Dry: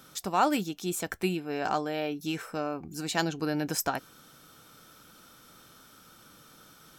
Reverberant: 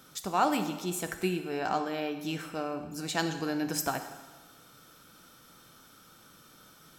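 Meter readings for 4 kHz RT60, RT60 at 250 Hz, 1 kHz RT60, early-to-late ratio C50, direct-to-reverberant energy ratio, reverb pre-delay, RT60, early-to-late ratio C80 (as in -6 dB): 1.2 s, 1.3 s, 1.3 s, 9.0 dB, 7.0 dB, 7 ms, 1.3 s, 11.0 dB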